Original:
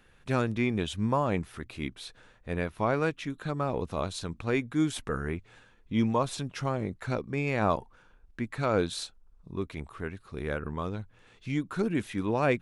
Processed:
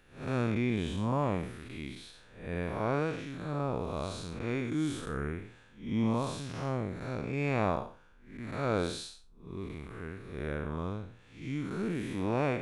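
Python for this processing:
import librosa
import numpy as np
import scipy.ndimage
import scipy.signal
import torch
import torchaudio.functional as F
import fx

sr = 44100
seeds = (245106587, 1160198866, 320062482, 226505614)

y = fx.spec_blur(x, sr, span_ms=200.0)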